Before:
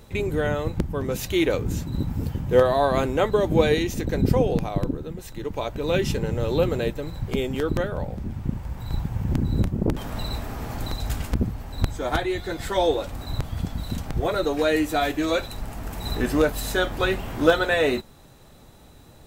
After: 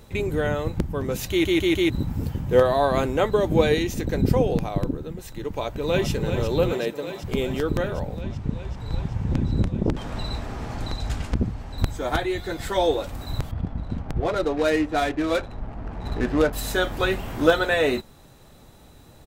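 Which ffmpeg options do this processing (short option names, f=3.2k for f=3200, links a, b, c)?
-filter_complex "[0:a]asplit=2[a][b];[b]afade=t=in:st=5.44:d=0.01,afade=t=out:st=6.09:d=0.01,aecho=0:1:380|760|1140|1520|1900|2280|2660|3040|3420|3800|4180|4560:0.398107|0.318486|0.254789|0.203831|0.163065|0.130452|0.104361|0.0834891|0.0667913|0.053433|0.0427464|0.0341971[c];[a][c]amix=inputs=2:normalize=0,asettb=1/sr,asplit=3[d][e][f];[d]atrim=end=6.724[g];[e]atrim=start=6.72:end=7.24,asetpts=PTS-STARTPTS,afade=t=in:d=0.004:c=qsin,afade=t=out:st=0.516:d=0.004:c=qsin,highpass=240[h];[f]atrim=start=7.236[i];[g][h]acrossfade=d=0.004:c1=hsin:c2=qsin[j];[j][i]acrossfade=d=0.004:c1=qsin:c2=hsin,asettb=1/sr,asplit=3[k][l][m];[k]atrim=end=8.214[n];[l]atrim=start=8.21:end=11.78,asetpts=PTS-STARTPTS,afade=t=in:d=0.004:c=qsin,afade=t=out:st=3.566:d=0.004:c=qsin,lowpass=7k[o];[m]atrim=start=11.776[p];[n][o]acrossfade=d=0.004:c1=hsin:c2=qsin[q];[q][p]acrossfade=d=0.004:c1=qsin:c2=hsin,asettb=1/sr,asplit=3[r][s][t];[r]atrim=end=13.514[u];[s]atrim=start=13.51:end=16.53,asetpts=PTS-STARTPTS,afade=t=in:d=0.004:c=qsin,afade=t=out:st=3.016:d=0.004:c=qsin,adynamicsmooth=sensitivity=4:basefreq=990[v];[t]atrim=start=16.526[w];[u][v]acrossfade=d=0.004:c1=hsin:c2=qsin[x];[x][w]acrossfade=d=0.004:c1=qsin:c2=hsin,asplit=5[y][z][aa][ab][ac];[y]atrim=end=1.452[ad];[z]atrim=start=1.298:end=1.452[ae];[aa]atrim=start=1.298:end=1.452[af];[ab]atrim=start=1.298:end=1.452[ag];[ac]atrim=start=1.898[ah];[ad][ae]acrossfade=d=0.004:c1=hsin:c2=hsin[ai];[ai][af]acrossfade=d=0.004:c1=hsin:c2=hsin[aj];[aj][ag]acrossfade=d=0.004:c1=hsin:c2=hsin[ak];[ak][ah]acrossfade=d=0.004:c1=hsin:c2=hsin"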